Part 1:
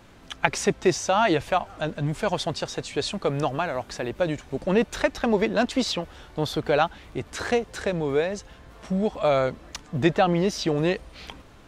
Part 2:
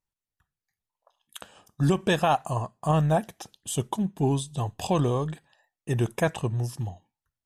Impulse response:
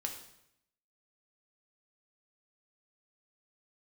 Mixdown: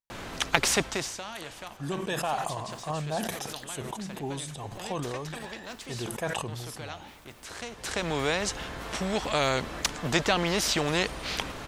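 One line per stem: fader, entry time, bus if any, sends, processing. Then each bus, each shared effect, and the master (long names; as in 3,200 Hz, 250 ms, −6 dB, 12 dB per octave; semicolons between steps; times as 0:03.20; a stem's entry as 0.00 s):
−1.0 dB, 0.10 s, send −22.5 dB, every bin compressed towards the loudest bin 2 to 1; automatic ducking −20 dB, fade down 0.50 s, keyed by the second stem
−7.0 dB, 0.00 s, no send, low-shelf EQ 220 Hz −10.5 dB; level that may fall only so fast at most 29 dB per second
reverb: on, RT60 0.80 s, pre-delay 3 ms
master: no processing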